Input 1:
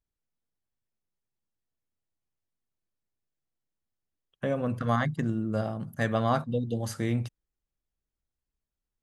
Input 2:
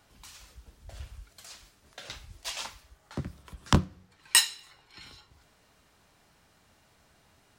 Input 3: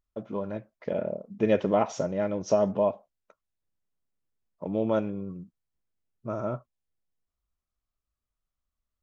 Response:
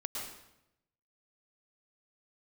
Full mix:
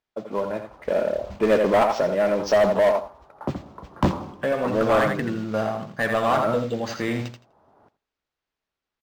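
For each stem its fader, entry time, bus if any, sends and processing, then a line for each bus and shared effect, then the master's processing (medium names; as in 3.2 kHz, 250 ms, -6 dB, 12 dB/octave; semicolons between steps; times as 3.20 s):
-7.0 dB, 0.00 s, no send, echo send -7.5 dB, low-pass 9.6 kHz
-1.0 dB, 0.30 s, send -18 dB, echo send -19 dB, low-pass 1 kHz 24 dB/octave; auto duck -15 dB, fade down 0.25 s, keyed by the first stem
-5.0 dB, 0.00 s, no send, echo send -9 dB, low-pass that closes with the level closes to 2.2 kHz, closed at -20.5 dBFS; three bands expanded up and down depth 40%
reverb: on, RT60 0.85 s, pre-delay 101 ms
echo: feedback delay 83 ms, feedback 17%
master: modulation noise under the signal 25 dB; overdrive pedal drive 25 dB, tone 4.3 kHz, clips at -9 dBFS; decimation joined by straight lines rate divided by 4×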